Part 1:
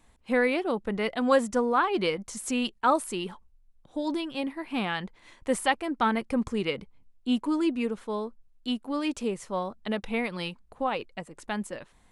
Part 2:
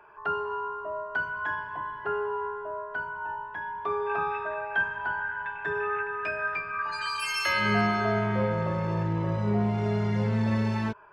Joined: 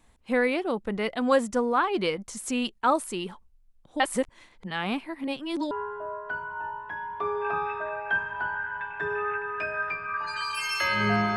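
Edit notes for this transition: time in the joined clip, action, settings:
part 1
4–5.71 reverse
5.71 switch to part 2 from 2.36 s

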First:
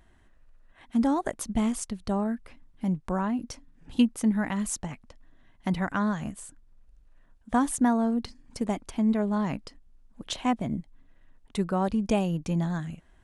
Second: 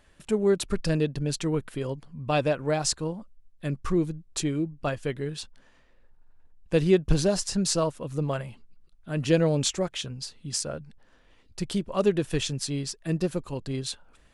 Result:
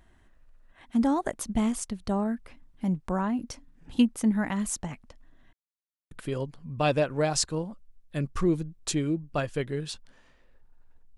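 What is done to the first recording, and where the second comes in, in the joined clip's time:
first
5.53–6.11 mute
6.11 switch to second from 1.6 s

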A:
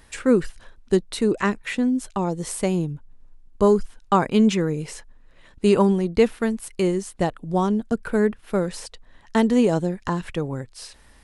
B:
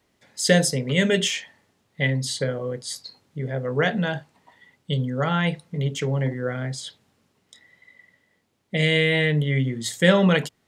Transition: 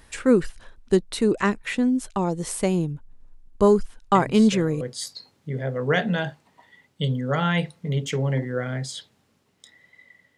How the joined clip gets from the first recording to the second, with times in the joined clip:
A
4.15 add B from 2.04 s 0.66 s -11.5 dB
4.81 switch to B from 2.7 s

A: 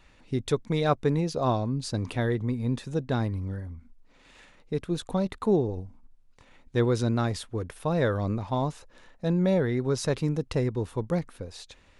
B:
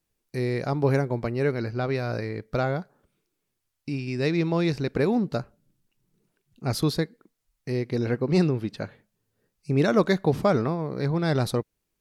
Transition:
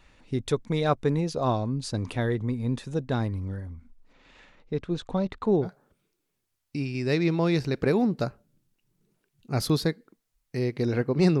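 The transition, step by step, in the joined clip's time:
A
4.13–5.69 Bessel low-pass 4900 Hz, order 4
5.65 switch to B from 2.78 s, crossfade 0.08 s

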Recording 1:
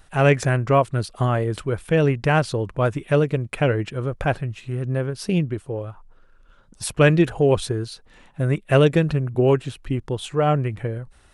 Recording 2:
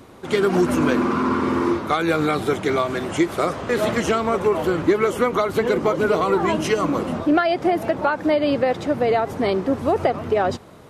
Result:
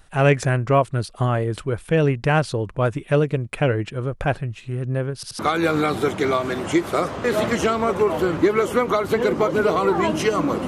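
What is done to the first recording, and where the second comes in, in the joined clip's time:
recording 1
5.15 stutter in place 0.08 s, 3 plays
5.39 switch to recording 2 from 1.84 s

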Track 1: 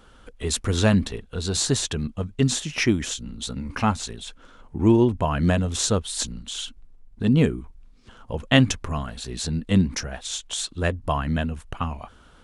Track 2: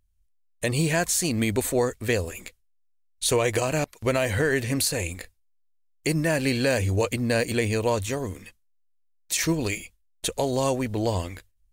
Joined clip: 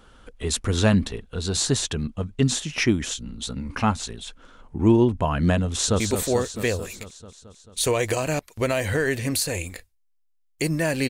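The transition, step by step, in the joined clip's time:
track 1
5.66–6 echo throw 0.22 s, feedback 70%, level -7 dB
6 switch to track 2 from 1.45 s

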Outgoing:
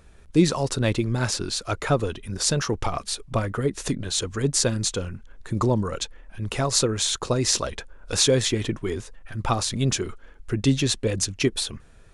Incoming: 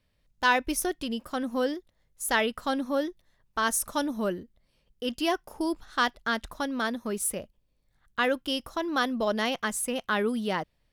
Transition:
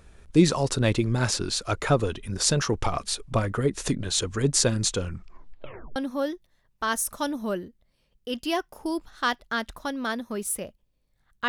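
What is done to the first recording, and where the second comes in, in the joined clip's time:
outgoing
5.07 tape stop 0.89 s
5.96 switch to incoming from 2.71 s

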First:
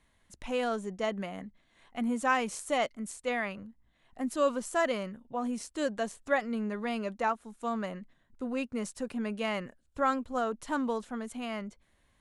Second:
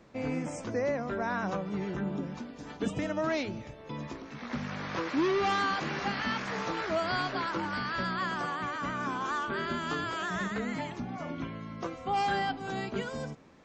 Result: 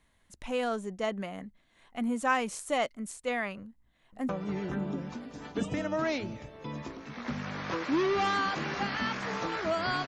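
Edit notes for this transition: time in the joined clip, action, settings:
first
3.61–4.29 echo throw 0.51 s, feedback 65%, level -13 dB
4.29 switch to second from 1.54 s

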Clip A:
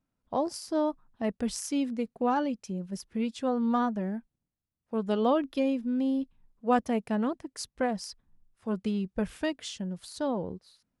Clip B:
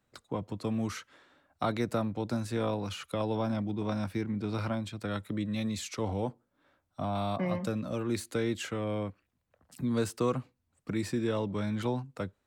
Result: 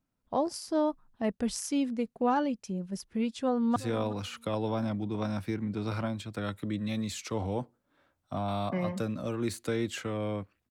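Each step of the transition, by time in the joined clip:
clip A
3.3–3.76 echo throw 0.37 s, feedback 15%, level -17 dB
3.76 switch to clip B from 2.43 s

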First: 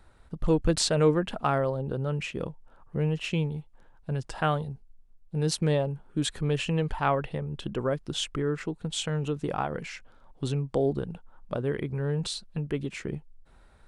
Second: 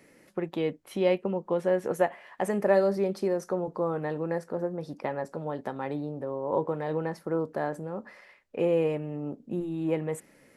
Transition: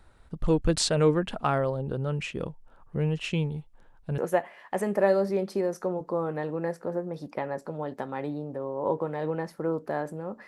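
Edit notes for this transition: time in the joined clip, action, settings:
first
4.18 switch to second from 1.85 s

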